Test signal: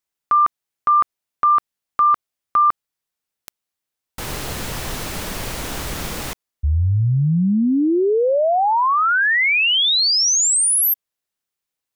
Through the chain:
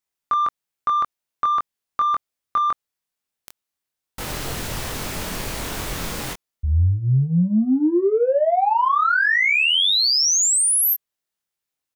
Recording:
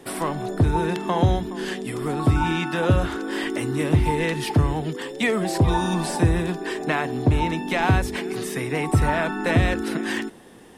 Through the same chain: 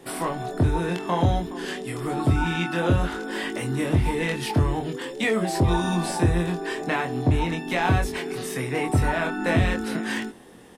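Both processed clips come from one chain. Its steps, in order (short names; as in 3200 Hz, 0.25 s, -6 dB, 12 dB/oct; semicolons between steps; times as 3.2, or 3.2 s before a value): in parallel at -7.5 dB: soft clip -15 dBFS; on the sum: doubler 23 ms -3.5 dB; gain -5.5 dB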